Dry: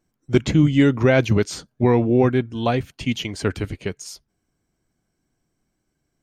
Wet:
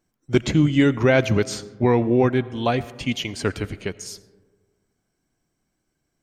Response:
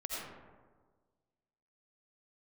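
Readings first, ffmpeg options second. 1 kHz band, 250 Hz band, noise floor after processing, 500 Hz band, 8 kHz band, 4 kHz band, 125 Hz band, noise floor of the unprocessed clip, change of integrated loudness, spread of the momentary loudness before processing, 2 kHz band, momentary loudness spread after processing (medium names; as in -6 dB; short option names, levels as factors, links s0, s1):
0.0 dB, -1.5 dB, -76 dBFS, -0.5 dB, +0.5 dB, +0.5 dB, -2.5 dB, -76 dBFS, -1.5 dB, 12 LU, +0.5 dB, 12 LU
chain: -filter_complex "[0:a]lowshelf=f=370:g=-3.5,asplit=2[s0][s1];[1:a]atrim=start_sample=2205[s2];[s1][s2]afir=irnorm=-1:irlink=0,volume=0.126[s3];[s0][s3]amix=inputs=2:normalize=0"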